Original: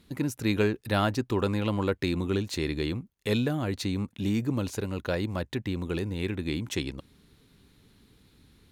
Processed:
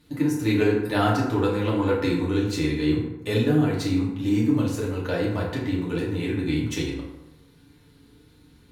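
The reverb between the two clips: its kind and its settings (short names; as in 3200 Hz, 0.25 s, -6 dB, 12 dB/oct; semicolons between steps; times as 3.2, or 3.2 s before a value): FDN reverb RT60 1 s, low-frequency decay 0.85×, high-frequency decay 0.5×, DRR -6 dB; gain -3 dB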